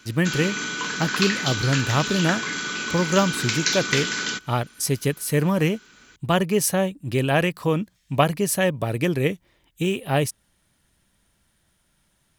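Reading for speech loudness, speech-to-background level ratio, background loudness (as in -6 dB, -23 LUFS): -23.5 LUFS, 1.5 dB, -25.0 LUFS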